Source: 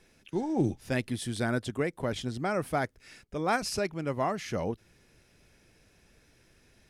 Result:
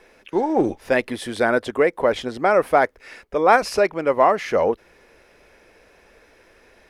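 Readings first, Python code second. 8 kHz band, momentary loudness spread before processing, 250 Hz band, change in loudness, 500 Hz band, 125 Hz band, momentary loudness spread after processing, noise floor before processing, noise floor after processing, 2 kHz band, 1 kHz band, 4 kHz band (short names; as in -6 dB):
+2.0 dB, 6 LU, +6.0 dB, +11.5 dB, +14.0 dB, -3.5 dB, 8 LU, -64 dBFS, -55 dBFS, +12.0 dB, +14.0 dB, +5.5 dB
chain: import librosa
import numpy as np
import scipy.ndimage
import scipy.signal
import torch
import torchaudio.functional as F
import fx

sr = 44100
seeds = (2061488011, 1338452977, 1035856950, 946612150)

p1 = 10.0 ** (-24.0 / 20.0) * np.tanh(x / 10.0 ** (-24.0 / 20.0))
p2 = x + (p1 * librosa.db_to_amplitude(-9.0))
p3 = fx.graphic_eq(p2, sr, hz=(125, 500, 1000, 2000, 8000), db=(-11, 10, 8, 6, -4))
y = p3 * librosa.db_to_amplitude(2.5)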